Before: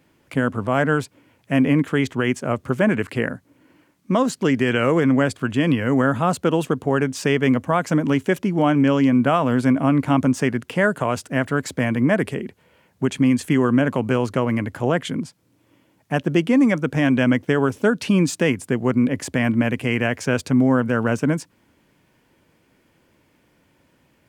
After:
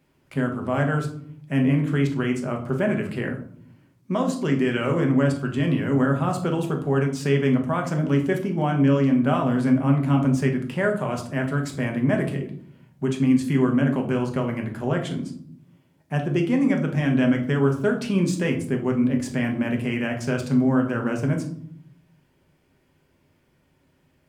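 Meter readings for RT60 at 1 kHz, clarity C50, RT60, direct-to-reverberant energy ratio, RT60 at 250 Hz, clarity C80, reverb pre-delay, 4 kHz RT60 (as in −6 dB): 0.55 s, 9.5 dB, 0.60 s, 2.0 dB, 1.0 s, 14.0 dB, 5 ms, 0.35 s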